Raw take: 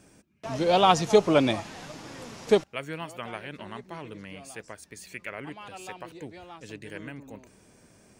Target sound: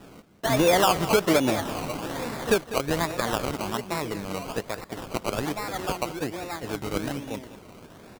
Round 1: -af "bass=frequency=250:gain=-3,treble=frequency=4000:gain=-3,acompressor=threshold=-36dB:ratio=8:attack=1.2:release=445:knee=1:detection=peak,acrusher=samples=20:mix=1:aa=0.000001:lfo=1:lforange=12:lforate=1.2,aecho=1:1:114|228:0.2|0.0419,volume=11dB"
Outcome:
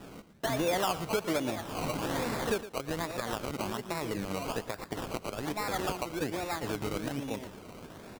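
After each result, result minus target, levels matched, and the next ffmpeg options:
downward compressor: peak gain reduction +9.5 dB; echo 85 ms early
-af "bass=frequency=250:gain=-3,treble=frequency=4000:gain=-3,acompressor=threshold=-25dB:ratio=8:attack=1.2:release=445:knee=1:detection=peak,acrusher=samples=20:mix=1:aa=0.000001:lfo=1:lforange=12:lforate=1.2,aecho=1:1:114|228:0.2|0.0419,volume=11dB"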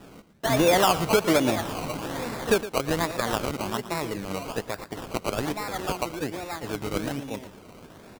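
echo 85 ms early
-af "bass=frequency=250:gain=-3,treble=frequency=4000:gain=-3,acompressor=threshold=-25dB:ratio=8:attack=1.2:release=445:knee=1:detection=peak,acrusher=samples=20:mix=1:aa=0.000001:lfo=1:lforange=12:lforate=1.2,aecho=1:1:199|398:0.2|0.0419,volume=11dB"

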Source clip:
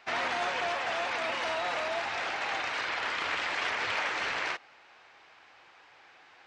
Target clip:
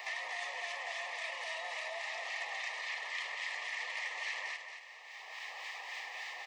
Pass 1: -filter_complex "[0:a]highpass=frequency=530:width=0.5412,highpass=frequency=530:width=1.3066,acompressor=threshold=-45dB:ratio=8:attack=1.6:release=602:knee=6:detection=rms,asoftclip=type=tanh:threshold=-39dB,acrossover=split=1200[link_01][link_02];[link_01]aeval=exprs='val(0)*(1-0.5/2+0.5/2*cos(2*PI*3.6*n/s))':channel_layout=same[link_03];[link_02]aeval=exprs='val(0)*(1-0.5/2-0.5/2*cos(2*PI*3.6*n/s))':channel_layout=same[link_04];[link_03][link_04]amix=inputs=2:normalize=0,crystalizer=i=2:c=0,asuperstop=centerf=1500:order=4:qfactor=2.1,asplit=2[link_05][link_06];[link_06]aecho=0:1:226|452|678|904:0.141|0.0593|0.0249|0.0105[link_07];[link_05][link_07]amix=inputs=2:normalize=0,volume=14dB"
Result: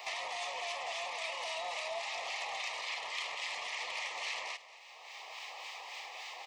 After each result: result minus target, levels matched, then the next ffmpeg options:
echo-to-direct −9.5 dB; downward compressor: peak gain reduction −5.5 dB; 2,000 Hz band −3.0 dB
-filter_complex "[0:a]highpass=frequency=530:width=0.5412,highpass=frequency=530:width=1.3066,acompressor=threshold=-45dB:ratio=8:attack=1.6:release=602:knee=6:detection=rms,asoftclip=type=tanh:threshold=-39dB,acrossover=split=1200[link_01][link_02];[link_01]aeval=exprs='val(0)*(1-0.5/2+0.5/2*cos(2*PI*3.6*n/s))':channel_layout=same[link_03];[link_02]aeval=exprs='val(0)*(1-0.5/2-0.5/2*cos(2*PI*3.6*n/s))':channel_layout=same[link_04];[link_03][link_04]amix=inputs=2:normalize=0,crystalizer=i=2:c=0,asuperstop=centerf=1500:order=4:qfactor=2.1,asplit=2[link_05][link_06];[link_06]aecho=0:1:226|452|678|904|1130:0.422|0.177|0.0744|0.0312|0.0131[link_07];[link_05][link_07]amix=inputs=2:normalize=0,volume=14dB"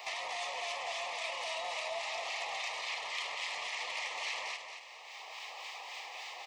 downward compressor: peak gain reduction −5.5 dB; 2,000 Hz band −3.0 dB
-filter_complex "[0:a]highpass=frequency=530:width=0.5412,highpass=frequency=530:width=1.3066,acompressor=threshold=-51.5dB:ratio=8:attack=1.6:release=602:knee=6:detection=rms,asoftclip=type=tanh:threshold=-39dB,acrossover=split=1200[link_01][link_02];[link_01]aeval=exprs='val(0)*(1-0.5/2+0.5/2*cos(2*PI*3.6*n/s))':channel_layout=same[link_03];[link_02]aeval=exprs='val(0)*(1-0.5/2-0.5/2*cos(2*PI*3.6*n/s))':channel_layout=same[link_04];[link_03][link_04]amix=inputs=2:normalize=0,crystalizer=i=2:c=0,asuperstop=centerf=1500:order=4:qfactor=2.1,asplit=2[link_05][link_06];[link_06]aecho=0:1:226|452|678|904|1130:0.422|0.177|0.0744|0.0312|0.0131[link_07];[link_05][link_07]amix=inputs=2:normalize=0,volume=14dB"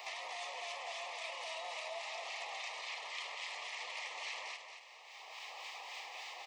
2,000 Hz band −3.0 dB
-filter_complex "[0:a]highpass=frequency=530:width=0.5412,highpass=frequency=530:width=1.3066,acompressor=threshold=-51.5dB:ratio=8:attack=1.6:release=602:knee=6:detection=rms,asoftclip=type=tanh:threshold=-39dB,acrossover=split=1200[link_01][link_02];[link_01]aeval=exprs='val(0)*(1-0.5/2+0.5/2*cos(2*PI*3.6*n/s))':channel_layout=same[link_03];[link_02]aeval=exprs='val(0)*(1-0.5/2-0.5/2*cos(2*PI*3.6*n/s))':channel_layout=same[link_04];[link_03][link_04]amix=inputs=2:normalize=0,crystalizer=i=2:c=0,asuperstop=centerf=1500:order=4:qfactor=2.1,equalizer=frequency=1800:width_type=o:width=0.31:gain=14.5,asplit=2[link_05][link_06];[link_06]aecho=0:1:226|452|678|904|1130:0.422|0.177|0.0744|0.0312|0.0131[link_07];[link_05][link_07]amix=inputs=2:normalize=0,volume=14dB"

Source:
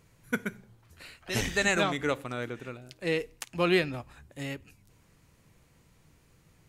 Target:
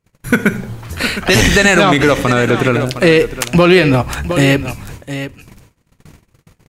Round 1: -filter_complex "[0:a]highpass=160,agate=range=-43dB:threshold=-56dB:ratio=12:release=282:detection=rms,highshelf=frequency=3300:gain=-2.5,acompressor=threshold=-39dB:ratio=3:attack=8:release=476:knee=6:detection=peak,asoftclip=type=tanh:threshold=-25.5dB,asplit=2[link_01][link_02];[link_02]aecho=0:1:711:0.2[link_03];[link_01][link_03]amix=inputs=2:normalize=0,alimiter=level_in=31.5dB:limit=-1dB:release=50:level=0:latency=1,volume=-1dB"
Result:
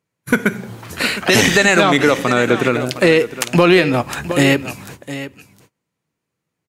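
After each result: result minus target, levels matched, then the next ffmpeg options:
downward compressor: peak gain reduction +4.5 dB; 125 Hz band −3.5 dB
-filter_complex "[0:a]highpass=160,agate=range=-43dB:threshold=-56dB:ratio=12:release=282:detection=rms,highshelf=frequency=3300:gain=-2.5,acompressor=threshold=-32.5dB:ratio=3:attack=8:release=476:knee=6:detection=peak,asoftclip=type=tanh:threshold=-25.5dB,asplit=2[link_01][link_02];[link_02]aecho=0:1:711:0.2[link_03];[link_01][link_03]amix=inputs=2:normalize=0,alimiter=level_in=31.5dB:limit=-1dB:release=50:level=0:latency=1,volume=-1dB"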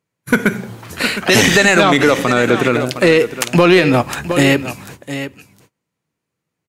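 125 Hz band −3.5 dB
-filter_complex "[0:a]agate=range=-43dB:threshold=-56dB:ratio=12:release=282:detection=rms,highshelf=frequency=3300:gain=-2.5,acompressor=threshold=-32.5dB:ratio=3:attack=8:release=476:knee=6:detection=peak,asoftclip=type=tanh:threshold=-25.5dB,asplit=2[link_01][link_02];[link_02]aecho=0:1:711:0.2[link_03];[link_01][link_03]amix=inputs=2:normalize=0,alimiter=level_in=31.5dB:limit=-1dB:release=50:level=0:latency=1,volume=-1dB"

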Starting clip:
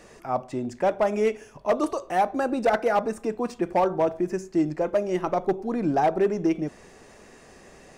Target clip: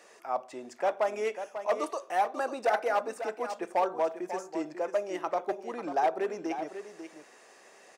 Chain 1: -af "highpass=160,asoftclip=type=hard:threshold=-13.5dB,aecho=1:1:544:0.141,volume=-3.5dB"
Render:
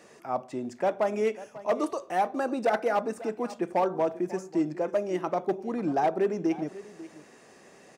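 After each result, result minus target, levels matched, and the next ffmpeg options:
125 Hz band +13.5 dB; echo-to-direct −7 dB
-af "highpass=520,asoftclip=type=hard:threshold=-13.5dB,aecho=1:1:544:0.141,volume=-3.5dB"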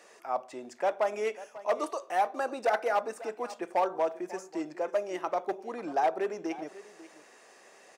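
echo-to-direct −7 dB
-af "highpass=520,asoftclip=type=hard:threshold=-13.5dB,aecho=1:1:544:0.316,volume=-3.5dB"

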